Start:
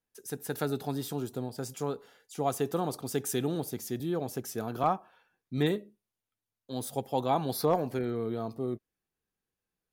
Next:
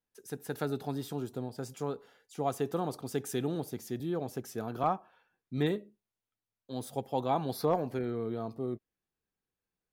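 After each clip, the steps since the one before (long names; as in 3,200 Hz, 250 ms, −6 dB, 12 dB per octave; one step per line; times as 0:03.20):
high-shelf EQ 4,900 Hz −6.5 dB
level −2 dB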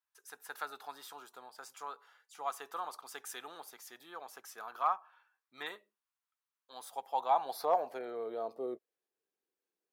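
high-pass filter sweep 1,100 Hz → 360 Hz, 0:06.63–0:09.49
level −3.5 dB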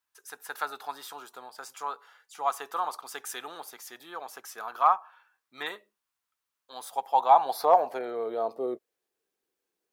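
dynamic equaliser 890 Hz, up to +4 dB, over −45 dBFS, Q 1.7
level +7 dB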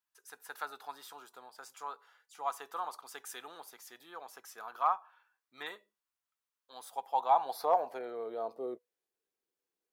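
tuned comb filter 490 Hz, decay 0.25 s, harmonics all, mix 40%
level −3.5 dB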